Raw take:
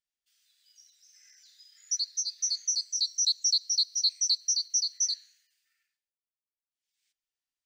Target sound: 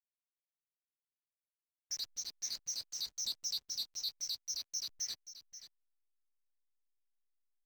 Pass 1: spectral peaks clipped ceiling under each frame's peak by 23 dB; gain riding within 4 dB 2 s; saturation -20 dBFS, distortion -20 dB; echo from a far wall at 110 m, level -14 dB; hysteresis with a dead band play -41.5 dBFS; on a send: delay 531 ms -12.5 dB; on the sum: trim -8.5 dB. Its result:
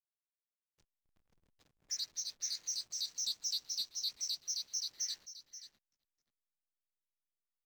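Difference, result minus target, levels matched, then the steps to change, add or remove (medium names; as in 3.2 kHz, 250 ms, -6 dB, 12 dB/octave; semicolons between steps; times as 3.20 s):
hysteresis with a dead band: distortion -8 dB
change: hysteresis with a dead band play -31 dBFS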